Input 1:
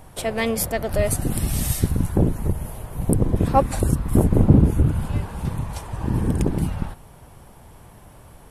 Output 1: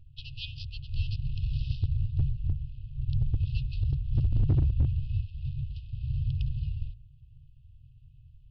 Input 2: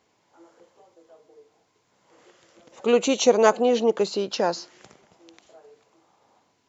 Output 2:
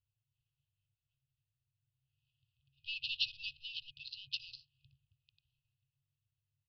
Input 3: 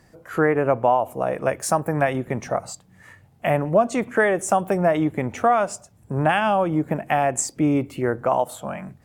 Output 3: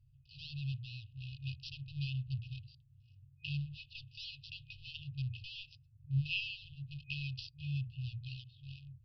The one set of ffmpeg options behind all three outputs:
-af "adynamicsmooth=sensitivity=5.5:basefreq=980,bandreject=f=60:t=h:w=6,bandreject=f=120:t=h:w=6,bandreject=f=180:t=h:w=6,bandreject=f=240:t=h:w=6,bandreject=f=300:t=h:w=6,bandreject=f=360:t=h:w=6,afftfilt=real='re*(1-between(b*sr/4096,150,2500))':imag='im*(1-between(b*sr/4096,150,2500))':win_size=4096:overlap=0.75,aresample=11025,asoftclip=type=hard:threshold=0.2,aresample=44100,volume=0.596"

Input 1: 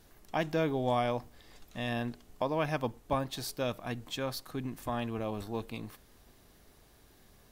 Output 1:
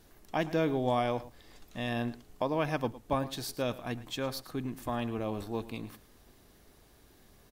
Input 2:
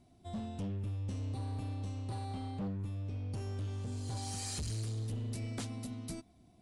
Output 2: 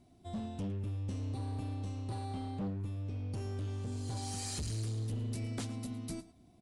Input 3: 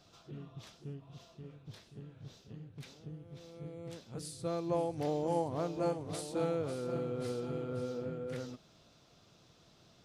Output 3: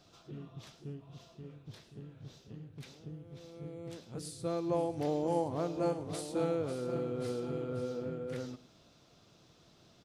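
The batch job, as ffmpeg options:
-af "equalizer=f=320:t=o:w=0.9:g=2.5,aecho=1:1:110:0.141"

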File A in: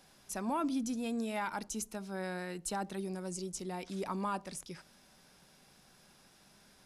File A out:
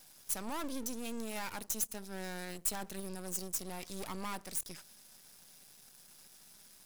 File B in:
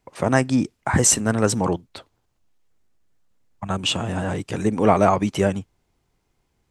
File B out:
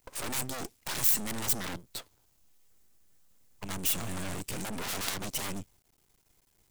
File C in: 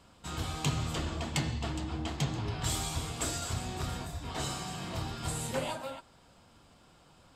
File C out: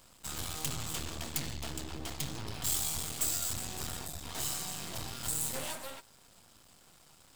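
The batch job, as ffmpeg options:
-af "aeval=exprs='0.891*(cos(1*acos(clip(val(0)/0.891,-1,1)))-cos(1*PI/2))+0.282*(cos(4*acos(clip(val(0)/0.891,-1,1)))-cos(4*PI/2))+0.112*(cos(6*acos(clip(val(0)/0.891,-1,1)))-cos(6*PI/2))+0.2*(cos(8*acos(clip(val(0)/0.891,-1,1)))-cos(8*PI/2))':c=same,aeval=exprs='max(val(0),0)':c=same,aemphasis=mode=production:type=75kf"

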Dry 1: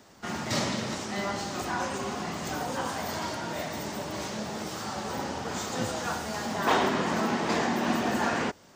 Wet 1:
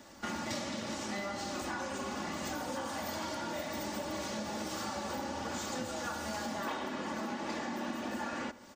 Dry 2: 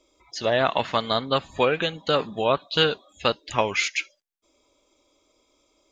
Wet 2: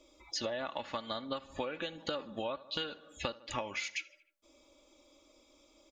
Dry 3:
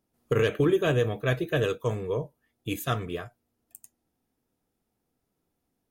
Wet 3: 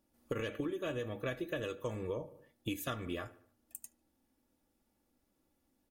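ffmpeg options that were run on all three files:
-filter_complex "[0:a]aecho=1:1:3.5:0.55,asplit=2[s0][s1];[s1]adelay=74,lowpass=f=2600:p=1,volume=0.0944,asplit=2[s2][s3];[s3]adelay=74,lowpass=f=2600:p=1,volume=0.49,asplit=2[s4][s5];[s5]adelay=74,lowpass=f=2600:p=1,volume=0.49,asplit=2[s6][s7];[s7]adelay=74,lowpass=f=2600:p=1,volume=0.49[s8];[s2][s4][s6][s8]amix=inputs=4:normalize=0[s9];[s0][s9]amix=inputs=2:normalize=0,acompressor=threshold=0.02:ratio=16"

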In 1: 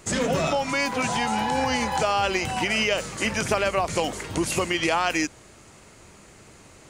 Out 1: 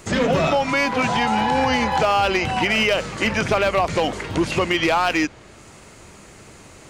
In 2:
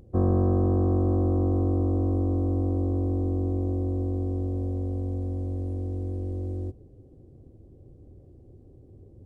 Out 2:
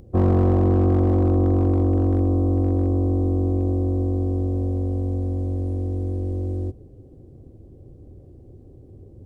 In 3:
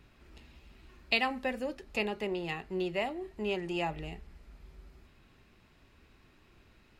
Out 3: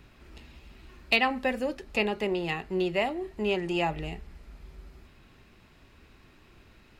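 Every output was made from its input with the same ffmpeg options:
-filter_complex "[0:a]acrossover=split=4800[s0][s1];[s1]acompressor=threshold=0.00178:ratio=4[s2];[s0][s2]amix=inputs=2:normalize=0,volume=7.5,asoftclip=hard,volume=0.133,volume=1.88"

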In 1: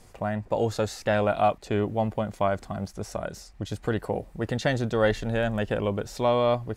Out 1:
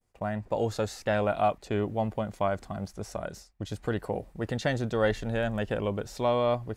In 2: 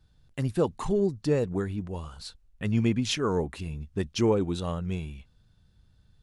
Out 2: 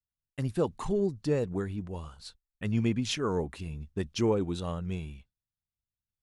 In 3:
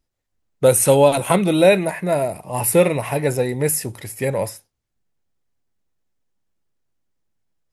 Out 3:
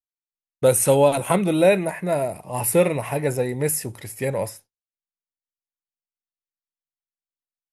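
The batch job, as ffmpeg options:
-af "agate=range=0.0224:threshold=0.0112:ratio=3:detection=peak,adynamicequalizer=threshold=0.00891:dfrequency=4100:dqfactor=1.5:tfrequency=4100:tqfactor=1.5:attack=5:release=100:ratio=0.375:range=2.5:mode=cutabove:tftype=bell,volume=0.708"

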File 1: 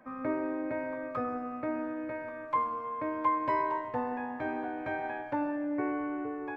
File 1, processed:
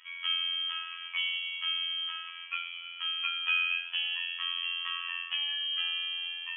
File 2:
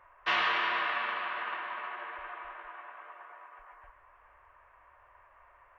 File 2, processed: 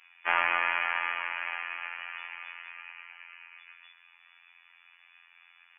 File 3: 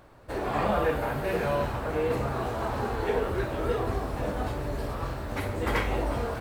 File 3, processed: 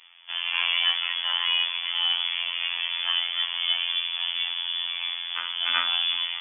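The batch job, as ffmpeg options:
-af "lowpass=f=3000:t=q:w=0.5098,lowpass=f=3000:t=q:w=0.6013,lowpass=f=3000:t=q:w=0.9,lowpass=f=3000:t=q:w=2.563,afreqshift=-3500,equalizer=f=125:t=o:w=1:g=-11,equalizer=f=500:t=o:w=1:g=-4,equalizer=f=1000:t=o:w=1:g=9,afftfilt=real='hypot(re,im)*cos(PI*b)':imag='0':win_size=2048:overlap=0.75,volume=1.41"

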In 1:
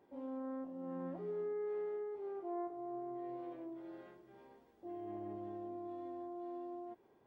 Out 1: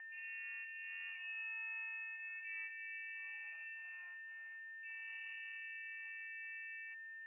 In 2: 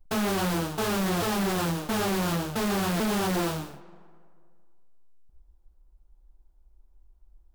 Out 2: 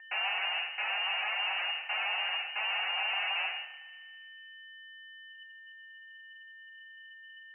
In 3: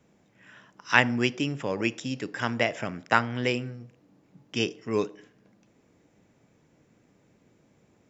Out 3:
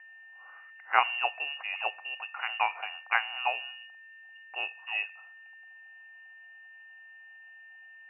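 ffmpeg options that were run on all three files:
-af "aeval=exprs='val(0)+0.00708*sin(2*PI*1200*n/s)':c=same,lowpass=f=2600:t=q:w=0.5098,lowpass=f=2600:t=q:w=0.6013,lowpass=f=2600:t=q:w=0.9,lowpass=f=2600:t=q:w=2.563,afreqshift=-3000,highpass=f=770:t=q:w=6.5,volume=0.422"

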